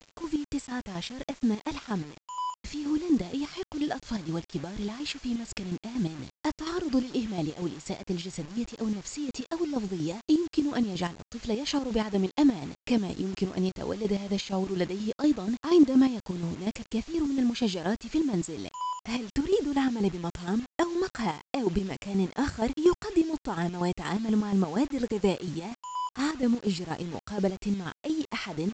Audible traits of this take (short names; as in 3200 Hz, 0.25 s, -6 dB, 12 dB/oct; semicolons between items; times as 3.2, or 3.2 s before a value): chopped level 4.2 Hz, depth 60%, duty 50%; a quantiser's noise floor 8-bit, dither none; µ-law